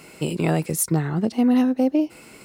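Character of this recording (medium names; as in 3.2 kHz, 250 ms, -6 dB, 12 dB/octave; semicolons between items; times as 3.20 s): noise floor -47 dBFS; spectral tilt -5.5 dB/octave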